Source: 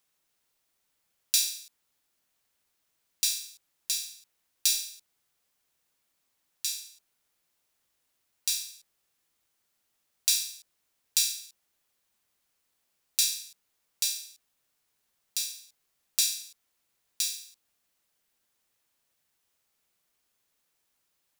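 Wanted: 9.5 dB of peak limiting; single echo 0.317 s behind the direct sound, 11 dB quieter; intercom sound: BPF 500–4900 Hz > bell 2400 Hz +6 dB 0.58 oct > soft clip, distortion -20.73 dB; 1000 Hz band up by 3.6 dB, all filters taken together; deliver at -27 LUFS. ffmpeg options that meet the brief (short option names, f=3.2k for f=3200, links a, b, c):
-af "equalizer=f=1k:t=o:g=4.5,alimiter=limit=-12dB:level=0:latency=1,highpass=500,lowpass=4.9k,equalizer=f=2.4k:t=o:w=0.58:g=6,aecho=1:1:317:0.282,asoftclip=threshold=-21.5dB,volume=10dB"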